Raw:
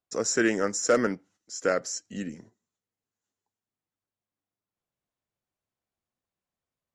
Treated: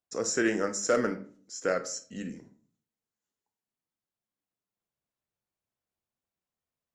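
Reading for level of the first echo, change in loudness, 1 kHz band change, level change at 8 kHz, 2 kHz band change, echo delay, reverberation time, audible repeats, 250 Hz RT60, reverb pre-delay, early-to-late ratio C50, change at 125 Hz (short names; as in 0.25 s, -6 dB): none, -3.0 dB, -3.0 dB, -3.0 dB, -3.0 dB, none, 0.50 s, none, 0.60 s, 22 ms, 13.5 dB, -3.0 dB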